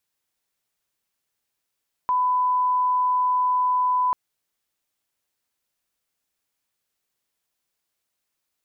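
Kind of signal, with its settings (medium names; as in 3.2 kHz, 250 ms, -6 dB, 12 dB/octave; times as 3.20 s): line-up tone -18 dBFS 2.04 s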